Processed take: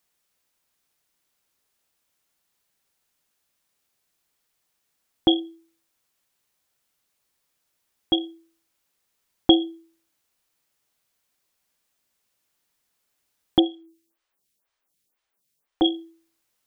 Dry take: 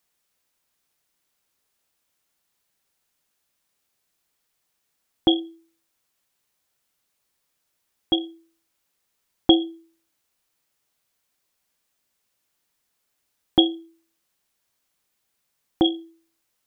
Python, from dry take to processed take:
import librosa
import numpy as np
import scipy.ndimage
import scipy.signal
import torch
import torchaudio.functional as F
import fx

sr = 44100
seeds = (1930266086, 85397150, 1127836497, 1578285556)

y = fx.stagger_phaser(x, sr, hz=2.0, at=(13.59, 15.82))